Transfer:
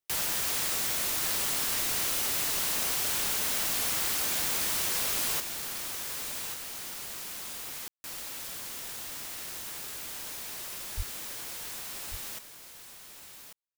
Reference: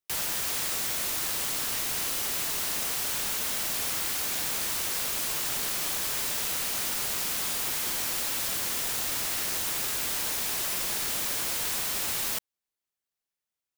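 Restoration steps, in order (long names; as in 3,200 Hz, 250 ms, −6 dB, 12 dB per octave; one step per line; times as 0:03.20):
0:10.96–0:11.08: high-pass filter 140 Hz 24 dB per octave
ambience match 0:07.88–0:08.04
echo removal 1,141 ms −8.5 dB
0:05.40: level correction +10 dB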